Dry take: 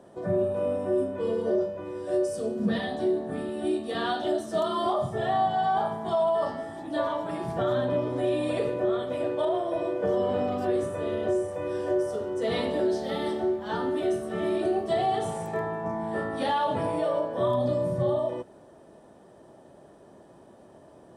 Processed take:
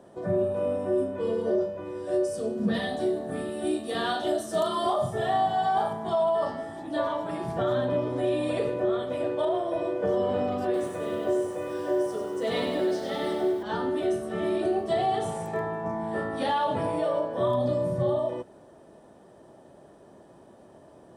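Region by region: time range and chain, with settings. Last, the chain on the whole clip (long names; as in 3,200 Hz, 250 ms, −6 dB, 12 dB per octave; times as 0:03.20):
0:02.74–0:05.93: high-shelf EQ 8,000 Hz +11.5 dB + double-tracking delay 39 ms −11 dB
0:10.64–0:13.63: high-pass filter 160 Hz 6 dB per octave + feedback echo at a low word length 98 ms, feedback 55%, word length 9 bits, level −6 dB
whole clip: no processing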